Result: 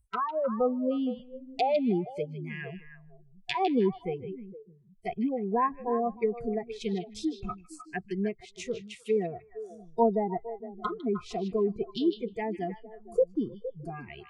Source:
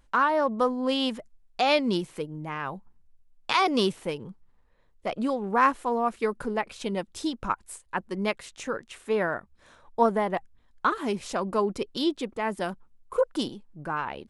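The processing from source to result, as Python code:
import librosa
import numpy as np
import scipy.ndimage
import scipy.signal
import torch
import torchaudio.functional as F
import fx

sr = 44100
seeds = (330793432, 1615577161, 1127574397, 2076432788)

p1 = fx.notch(x, sr, hz=1500.0, q=11.0)
p2 = fx.env_lowpass_down(p1, sr, base_hz=900.0, full_db=-24.0)
p3 = fx.noise_reduce_blind(p2, sr, reduce_db=27)
y = p3 + fx.echo_stepped(p3, sr, ms=154, hz=3500.0, octaves=-1.4, feedback_pct=70, wet_db=-6.5, dry=0)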